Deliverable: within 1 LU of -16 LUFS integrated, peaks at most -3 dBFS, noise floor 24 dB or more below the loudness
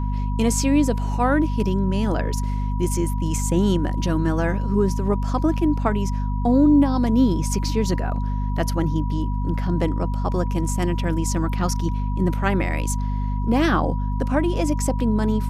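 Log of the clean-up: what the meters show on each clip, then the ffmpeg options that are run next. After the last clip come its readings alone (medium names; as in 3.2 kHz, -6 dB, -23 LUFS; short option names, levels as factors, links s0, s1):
hum 50 Hz; highest harmonic 250 Hz; hum level -21 dBFS; steady tone 970 Hz; tone level -35 dBFS; loudness -22.0 LUFS; peak level -6.5 dBFS; loudness target -16.0 LUFS
-> -af "bandreject=f=50:t=h:w=4,bandreject=f=100:t=h:w=4,bandreject=f=150:t=h:w=4,bandreject=f=200:t=h:w=4,bandreject=f=250:t=h:w=4"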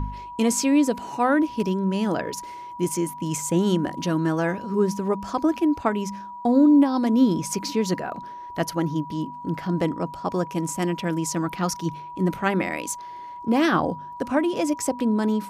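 hum not found; steady tone 970 Hz; tone level -35 dBFS
-> -af "bandreject=f=970:w=30"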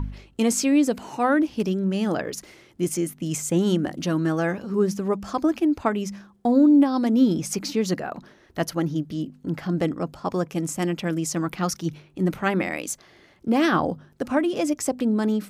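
steady tone not found; loudness -24.0 LUFS; peak level -8.0 dBFS; loudness target -16.0 LUFS
-> -af "volume=2.51,alimiter=limit=0.708:level=0:latency=1"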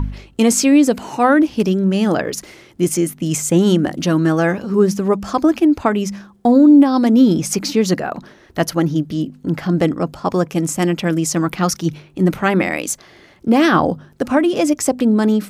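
loudness -16.5 LUFS; peak level -3.0 dBFS; noise floor -48 dBFS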